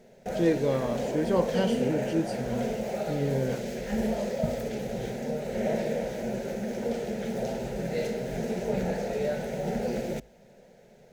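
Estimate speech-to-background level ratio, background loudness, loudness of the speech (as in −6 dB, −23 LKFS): 1.5 dB, −31.5 LKFS, −30.0 LKFS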